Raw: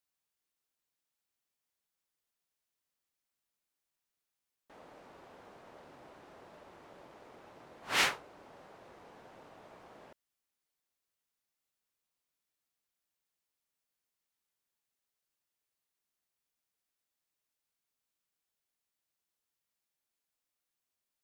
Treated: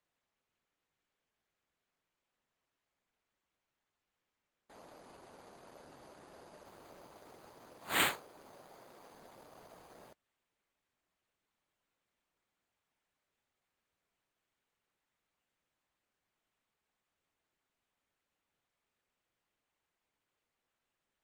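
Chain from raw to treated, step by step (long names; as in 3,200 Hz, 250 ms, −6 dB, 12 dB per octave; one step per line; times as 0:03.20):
decimation without filtering 8×
0:07.46–0:09.10: high-pass filter 59 Hz → 140 Hz 12 dB per octave
Opus 20 kbit/s 48,000 Hz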